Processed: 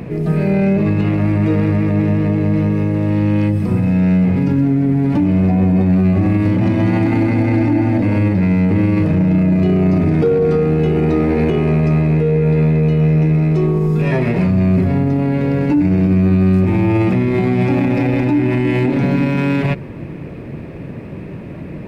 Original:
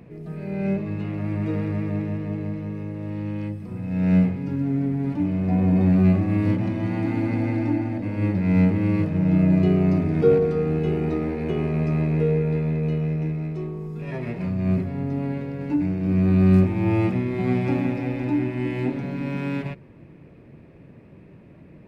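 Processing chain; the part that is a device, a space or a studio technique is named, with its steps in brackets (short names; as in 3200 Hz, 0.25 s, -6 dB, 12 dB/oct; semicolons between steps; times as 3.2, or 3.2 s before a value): loud club master (compressor 2:1, threshold -21 dBFS, peak gain reduction 5.5 dB; hard clip -13.5 dBFS, distortion -44 dB; maximiser +24.5 dB); gain -6.5 dB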